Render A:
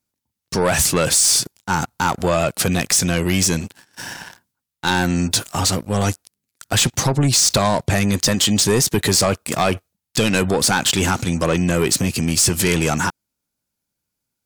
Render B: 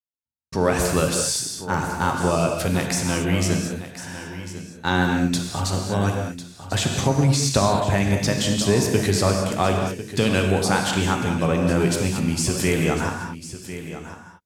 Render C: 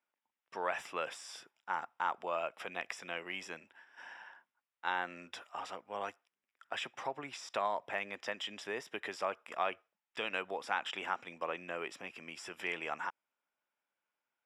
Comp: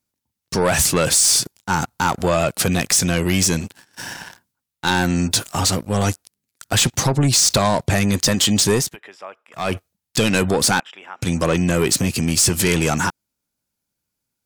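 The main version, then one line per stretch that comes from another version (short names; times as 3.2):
A
8.85–9.65 from C, crossfade 0.24 s
10.8–11.22 from C
not used: B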